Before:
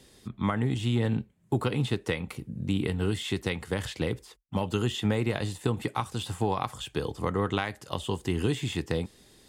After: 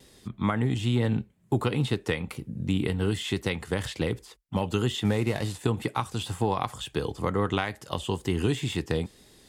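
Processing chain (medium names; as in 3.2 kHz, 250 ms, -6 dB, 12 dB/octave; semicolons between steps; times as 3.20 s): 5.05–5.59 s: CVSD coder 64 kbps; wow and flutter 44 cents; trim +1.5 dB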